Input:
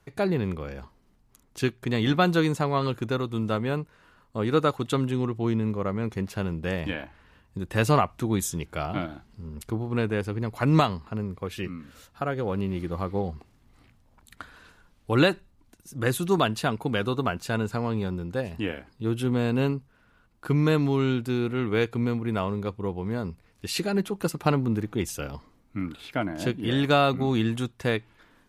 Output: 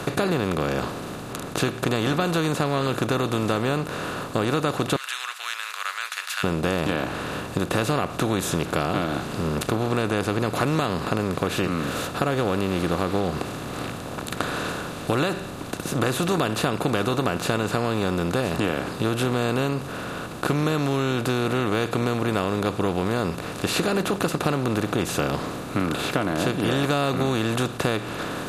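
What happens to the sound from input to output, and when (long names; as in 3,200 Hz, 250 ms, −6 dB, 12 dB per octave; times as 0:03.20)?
0:04.96–0:06.44: Butterworth high-pass 1,500 Hz 48 dB per octave
whole clip: compressor on every frequency bin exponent 0.4; downward compressor, threshold −19 dBFS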